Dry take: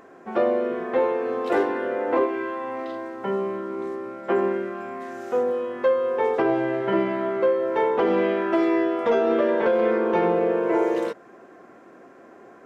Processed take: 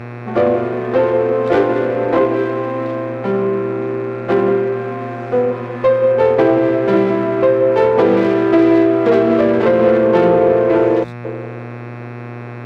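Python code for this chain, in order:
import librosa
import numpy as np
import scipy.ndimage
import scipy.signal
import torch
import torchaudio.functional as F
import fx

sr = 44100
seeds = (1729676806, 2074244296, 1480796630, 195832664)

y = fx.tracing_dist(x, sr, depth_ms=0.11)
y = fx.air_absorb(y, sr, metres=170.0)
y = fx.echo_banded(y, sr, ms=181, feedback_pct=49, hz=420.0, wet_db=-7.0)
y = fx.spec_erase(y, sr, start_s=11.04, length_s=0.21, low_hz=200.0, high_hz=3300.0)
y = fx.dmg_buzz(y, sr, base_hz=120.0, harmonics=22, level_db=-39.0, tilt_db=-4, odd_only=False)
y = scipy.signal.sosfilt(scipy.signal.butter(2, 83.0, 'highpass', fs=sr, output='sos'), y)
y = fx.low_shelf(y, sr, hz=210.0, db=7.5)
y = fx.notch(y, sr, hz=940.0, q=15.0)
y = fx.running_max(y, sr, window=3)
y = F.gain(torch.from_numpy(y), 6.5).numpy()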